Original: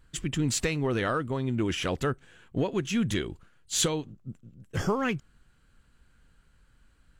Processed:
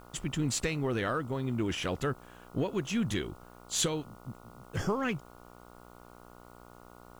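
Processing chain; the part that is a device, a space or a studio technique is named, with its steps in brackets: video cassette with head-switching buzz (buzz 60 Hz, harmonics 24, -50 dBFS -1 dB/oct; white noise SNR 33 dB); gain -3.5 dB

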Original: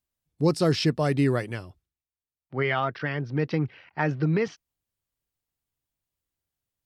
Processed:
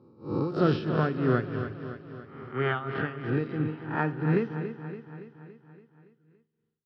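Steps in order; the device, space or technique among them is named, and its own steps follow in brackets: spectral swells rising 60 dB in 0.66 s; combo amplifier with spring reverb and tremolo (spring tank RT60 1.4 s, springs 45 ms, chirp 50 ms, DRR 10.5 dB; tremolo 3 Hz, depth 78%; speaker cabinet 80–3600 Hz, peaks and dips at 110 Hz +8 dB, 230 Hz +9 dB, 370 Hz +5 dB, 620 Hz -5 dB, 1400 Hz +7 dB, 2100 Hz -9 dB); feedback echo 0.283 s, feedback 58%, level -10.5 dB; gain -3.5 dB

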